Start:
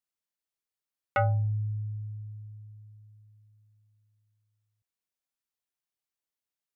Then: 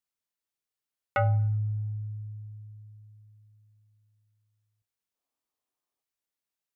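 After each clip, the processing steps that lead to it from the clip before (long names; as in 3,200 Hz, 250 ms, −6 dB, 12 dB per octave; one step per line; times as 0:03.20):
gain on a spectral selection 0:05.15–0:06.02, 230–1,300 Hz +8 dB
coupled-rooms reverb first 0.64 s, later 2.6 s, from −26 dB, DRR 17 dB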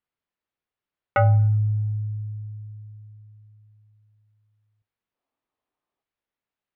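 high-frequency loss of the air 340 metres
level +7.5 dB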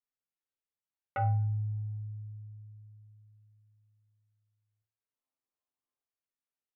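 resonators tuned to a chord F2 major, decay 0.34 s
treble cut that deepens with the level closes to 2,200 Hz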